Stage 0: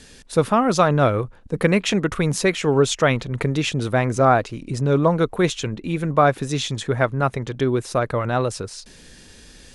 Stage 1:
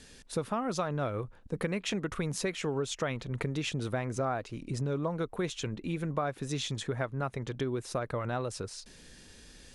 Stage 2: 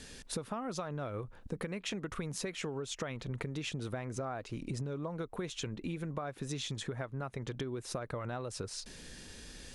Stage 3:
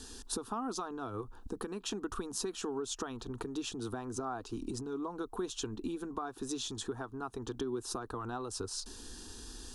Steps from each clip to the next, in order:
compression 4:1, threshold -22 dBFS, peak gain reduction 10 dB; trim -7.5 dB
compression 6:1, threshold -39 dBFS, peak gain reduction 12.5 dB; trim +3.5 dB
static phaser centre 570 Hz, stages 6; trim +4.5 dB

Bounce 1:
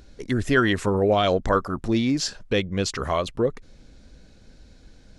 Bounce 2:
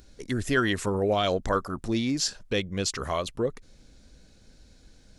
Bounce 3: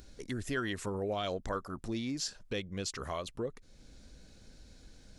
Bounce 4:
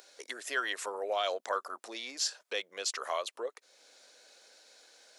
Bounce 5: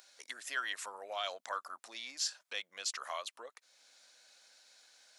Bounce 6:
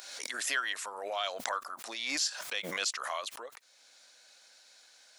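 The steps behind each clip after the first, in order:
treble shelf 5.3 kHz +10 dB; trim -5 dB
compression 1.5:1, threshold -50 dBFS, peak gain reduction 11 dB
high-pass 520 Hz 24 dB/octave; trim +5 dB
peaking EQ 410 Hz -14 dB 1.1 oct; trim -3 dB
swell ahead of each attack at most 41 dB/s; trim +3.5 dB

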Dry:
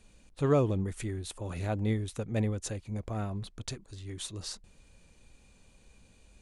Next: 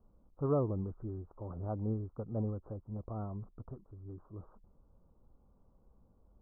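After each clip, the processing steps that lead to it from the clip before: steep low-pass 1.3 kHz 72 dB/octave; trim -5.5 dB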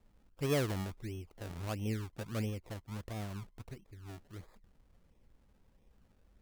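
decimation with a swept rate 29×, swing 100% 1.5 Hz; trim -1 dB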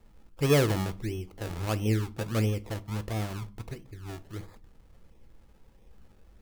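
reverberation RT60 0.35 s, pre-delay 6 ms, DRR 12.5 dB; trim +8.5 dB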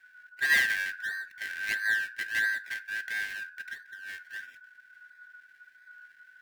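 four frequency bands reordered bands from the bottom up 4123; trim -2 dB

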